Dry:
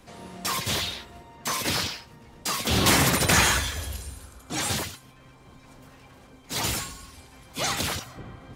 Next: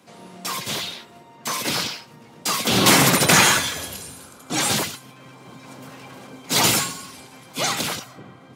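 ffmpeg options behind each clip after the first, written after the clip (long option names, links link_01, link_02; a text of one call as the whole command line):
ffmpeg -i in.wav -af "dynaudnorm=framelen=430:gausssize=9:maxgain=16.5dB,highpass=frequency=130:width=0.5412,highpass=frequency=130:width=1.3066,bandreject=frequency=1800:width=18" out.wav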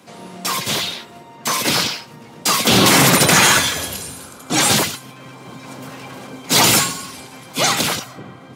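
ffmpeg -i in.wav -af "alimiter=level_in=7.5dB:limit=-1dB:release=50:level=0:latency=1,volume=-1dB" out.wav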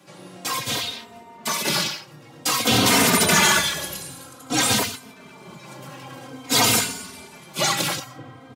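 ffmpeg -i in.wav -filter_complex "[0:a]asplit=2[link_01][link_02];[link_02]adelay=3.1,afreqshift=-0.52[link_03];[link_01][link_03]amix=inputs=2:normalize=1,volume=-2dB" out.wav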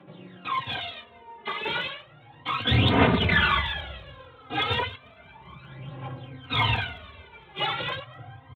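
ffmpeg -i in.wav -af "asubboost=boost=10.5:cutoff=67,aresample=8000,aresample=44100,aphaser=in_gain=1:out_gain=1:delay=2.5:decay=0.69:speed=0.33:type=triangular,volume=-6dB" out.wav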